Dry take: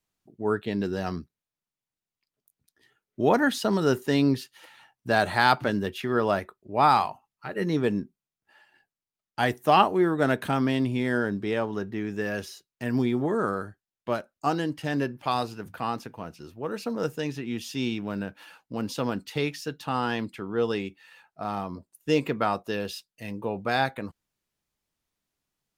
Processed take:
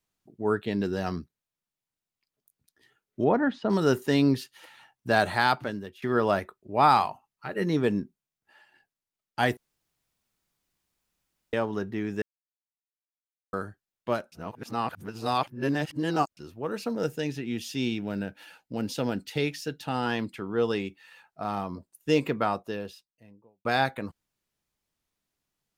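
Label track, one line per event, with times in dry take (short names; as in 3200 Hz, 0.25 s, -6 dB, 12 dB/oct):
3.240000	3.700000	tape spacing loss at 10 kHz 38 dB
5.190000	6.020000	fade out, to -18 dB
9.570000	11.530000	room tone
12.220000	13.530000	mute
14.320000	16.370000	reverse
16.930000	20.060000	bell 1100 Hz -13 dB 0.26 oct
22.190000	23.650000	studio fade out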